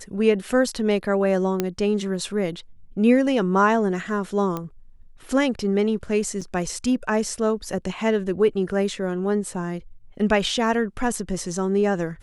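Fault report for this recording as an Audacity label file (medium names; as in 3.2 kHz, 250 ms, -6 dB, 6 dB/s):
1.600000	1.600000	pop -8 dBFS
4.570000	4.570000	pop -15 dBFS
6.410000	6.420000	dropout 5.8 ms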